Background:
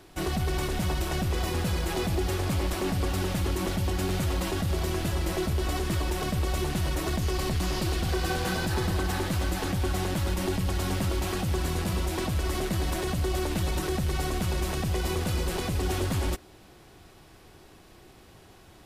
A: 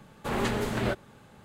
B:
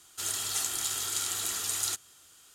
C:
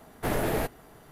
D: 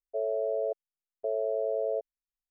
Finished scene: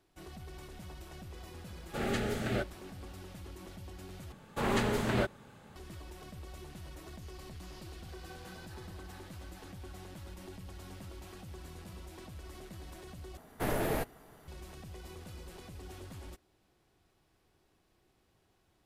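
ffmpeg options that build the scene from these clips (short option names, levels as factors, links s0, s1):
-filter_complex "[1:a]asplit=2[s0][s1];[0:a]volume=0.106[s2];[s0]asuperstop=centerf=1000:order=4:qfactor=3.2[s3];[s2]asplit=3[s4][s5][s6];[s4]atrim=end=4.324[s7];[s1]atrim=end=1.44,asetpts=PTS-STARTPTS,volume=0.841[s8];[s5]atrim=start=5.756:end=13.374[s9];[3:a]atrim=end=1.11,asetpts=PTS-STARTPTS,volume=0.596[s10];[s6]atrim=start=14.476[s11];[s3]atrim=end=1.44,asetpts=PTS-STARTPTS,volume=0.596,afade=t=in:d=0.004:c=hsin,afade=t=out:st=1.436:d=0.004:c=hsin,adelay=1690[s12];[s7][s8]acrossfade=d=0.004:c1=hsin:c2=hsin[s13];[s13][s9]acrossfade=d=0.004:c1=hsin:c2=hsin[s14];[s14][s10]acrossfade=d=0.004:c1=hsin:c2=hsin[s15];[s15][s11]acrossfade=d=0.004:c1=hsin:c2=hsin[s16];[s16][s12]amix=inputs=2:normalize=0"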